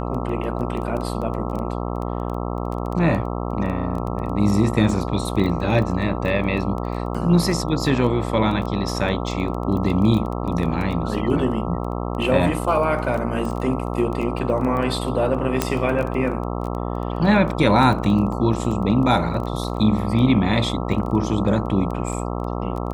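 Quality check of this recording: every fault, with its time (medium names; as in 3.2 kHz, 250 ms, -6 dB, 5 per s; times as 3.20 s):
buzz 60 Hz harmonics 22 -26 dBFS
crackle 13 per s -26 dBFS
15.62 s: pop -4 dBFS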